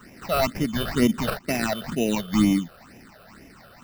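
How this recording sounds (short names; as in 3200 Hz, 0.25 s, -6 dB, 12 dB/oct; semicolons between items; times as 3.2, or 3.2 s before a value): aliases and images of a low sample rate 3300 Hz, jitter 0%; phasing stages 8, 2.1 Hz, lowest notch 260–1300 Hz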